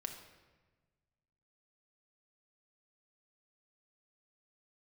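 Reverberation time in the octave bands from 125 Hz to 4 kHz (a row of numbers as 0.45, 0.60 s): 2.1, 1.6, 1.4, 1.2, 1.2, 0.95 s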